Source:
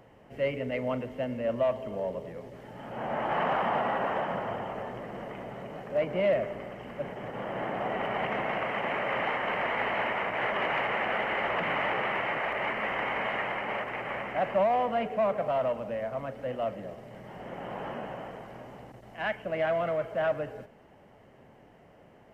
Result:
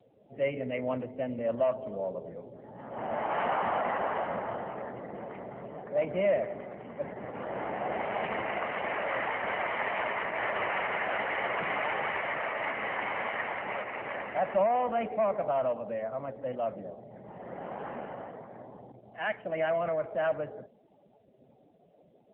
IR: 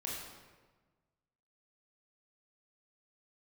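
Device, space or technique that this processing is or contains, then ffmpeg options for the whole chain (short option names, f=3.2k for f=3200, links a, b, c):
mobile call with aggressive noise cancelling: -af "highpass=f=120:p=1,afftdn=nr=22:nf=-49" -ar 8000 -c:a libopencore_amrnb -b:a 7950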